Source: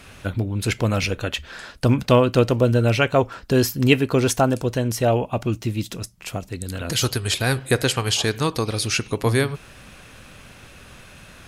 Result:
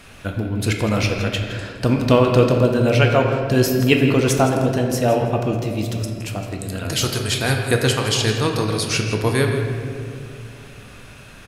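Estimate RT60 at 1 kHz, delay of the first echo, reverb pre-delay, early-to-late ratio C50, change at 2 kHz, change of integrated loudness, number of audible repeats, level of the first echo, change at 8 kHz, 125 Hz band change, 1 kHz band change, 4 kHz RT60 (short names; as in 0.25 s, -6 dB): 2.0 s, 0.165 s, 3 ms, 3.5 dB, +2.0 dB, +2.0 dB, 1, -12.5 dB, +1.0 dB, +2.5 dB, +2.0 dB, 1.2 s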